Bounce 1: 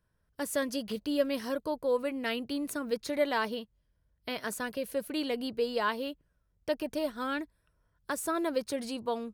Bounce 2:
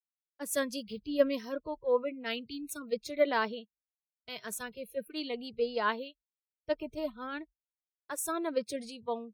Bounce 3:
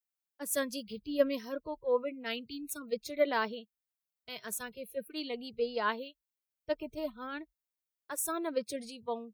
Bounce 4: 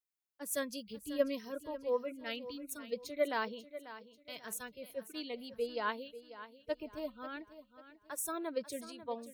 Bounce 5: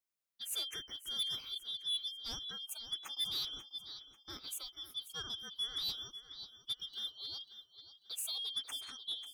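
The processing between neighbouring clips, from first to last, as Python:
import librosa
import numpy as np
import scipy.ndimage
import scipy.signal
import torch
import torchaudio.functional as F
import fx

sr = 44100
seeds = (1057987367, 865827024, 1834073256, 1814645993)

y1 = fx.noise_reduce_blind(x, sr, reduce_db=29)
y1 = fx.band_widen(y1, sr, depth_pct=100)
y1 = y1 * librosa.db_to_amplitude(-2.5)
y2 = fx.high_shelf(y1, sr, hz=12000.0, db=9.0)
y2 = y2 * librosa.db_to_amplitude(-1.5)
y3 = fx.echo_feedback(y2, sr, ms=541, feedback_pct=37, wet_db=-14)
y3 = y3 * librosa.db_to_amplitude(-4.0)
y4 = fx.band_shuffle(y3, sr, order='3412')
y4 = 10.0 ** (-31.5 / 20.0) * np.tanh(y4 / 10.0 ** (-31.5 / 20.0))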